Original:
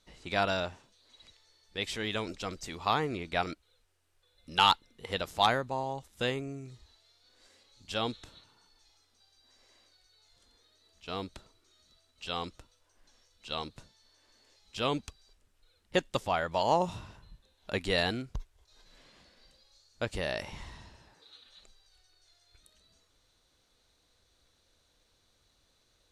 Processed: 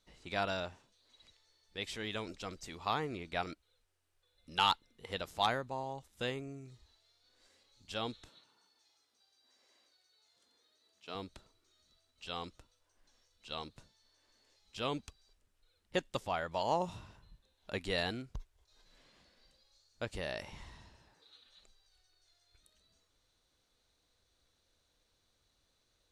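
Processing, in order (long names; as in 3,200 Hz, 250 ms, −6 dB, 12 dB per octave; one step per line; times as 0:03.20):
0:08.28–0:11.15: high-pass filter 200 Hz 12 dB per octave
level −6 dB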